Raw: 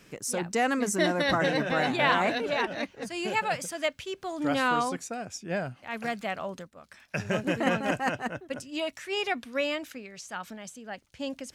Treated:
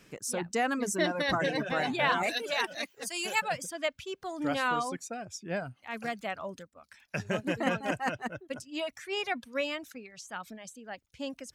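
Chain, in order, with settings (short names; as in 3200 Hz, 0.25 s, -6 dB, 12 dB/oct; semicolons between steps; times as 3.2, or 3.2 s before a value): reverb removal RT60 0.71 s; 2.23–3.42 RIAA curve recording; gain -2.5 dB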